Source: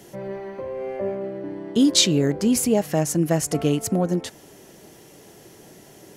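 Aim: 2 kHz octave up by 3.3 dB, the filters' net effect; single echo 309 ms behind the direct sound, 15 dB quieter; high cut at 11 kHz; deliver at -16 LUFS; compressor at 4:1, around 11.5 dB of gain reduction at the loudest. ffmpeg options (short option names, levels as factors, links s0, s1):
-af "lowpass=11000,equalizer=f=2000:t=o:g=4,acompressor=threshold=0.0447:ratio=4,aecho=1:1:309:0.178,volume=5.31"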